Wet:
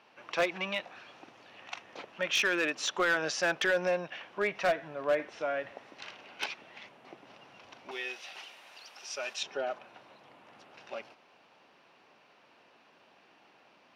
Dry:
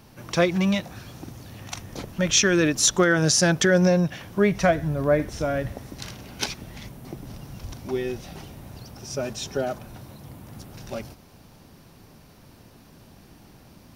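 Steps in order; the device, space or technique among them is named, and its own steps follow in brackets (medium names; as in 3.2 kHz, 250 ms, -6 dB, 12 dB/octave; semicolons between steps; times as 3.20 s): megaphone (band-pass 590–2900 Hz; peaking EQ 2.7 kHz +6 dB 0.42 oct; hard clipper -18 dBFS, distortion -16 dB); 7.91–9.43 s: tilt EQ +4.5 dB/octave; trim -3.5 dB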